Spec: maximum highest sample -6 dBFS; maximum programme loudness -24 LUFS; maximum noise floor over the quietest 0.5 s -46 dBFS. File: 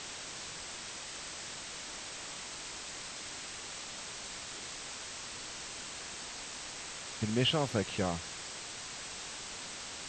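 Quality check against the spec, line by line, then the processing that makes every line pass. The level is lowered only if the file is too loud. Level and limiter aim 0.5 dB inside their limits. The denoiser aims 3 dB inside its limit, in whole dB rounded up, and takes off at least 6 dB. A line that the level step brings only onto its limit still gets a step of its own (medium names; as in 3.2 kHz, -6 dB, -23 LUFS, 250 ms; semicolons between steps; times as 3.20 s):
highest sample -17.5 dBFS: pass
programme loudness -38.5 LUFS: pass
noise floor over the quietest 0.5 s -44 dBFS: fail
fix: noise reduction 6 dB, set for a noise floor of -44 dBFS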